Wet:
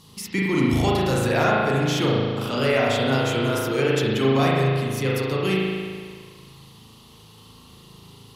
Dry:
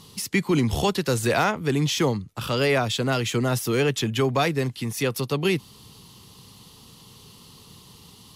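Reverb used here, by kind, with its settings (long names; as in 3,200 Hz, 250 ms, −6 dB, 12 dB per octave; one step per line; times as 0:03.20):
spring reverb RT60 1.8 s, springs 37 ms, chirp 30 ms, DRR −5 dB
level −4 dB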